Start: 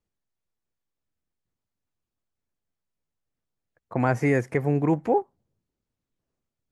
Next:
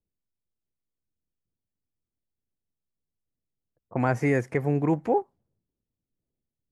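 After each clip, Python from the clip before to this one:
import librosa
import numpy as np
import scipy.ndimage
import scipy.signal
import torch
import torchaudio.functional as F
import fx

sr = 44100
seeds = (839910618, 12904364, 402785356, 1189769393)

y = fx.env_lowpass(x, sr, base_hz=450.0, full_db=-22.5)
y = F.gain(torch.from_numpy(y), -1.5).numpy()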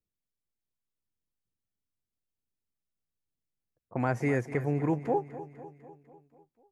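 y = fx.echo_feedback(x, sr, ms=249, feedback_pct=58, wet_db=-14.5)
y = F.gain(torch.from_numpy(y), -4.5).numpy()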